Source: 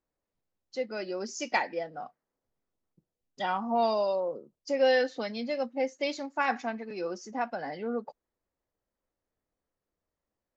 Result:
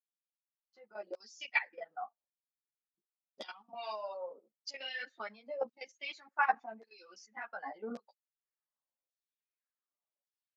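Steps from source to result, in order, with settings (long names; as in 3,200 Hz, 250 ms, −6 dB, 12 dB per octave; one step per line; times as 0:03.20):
fade in at the beginning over 2.08 s
reverb reduction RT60 1.8 s
notch filter 470 Hz, Q 14
auto-filter band-pass saw down 0.88 Hz 590–5,200 Hz
output level in coarse steps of 16 dB
linear-phase brick-wall high-pass 150 Hz
string-ensemble chorus
level +10.5 dB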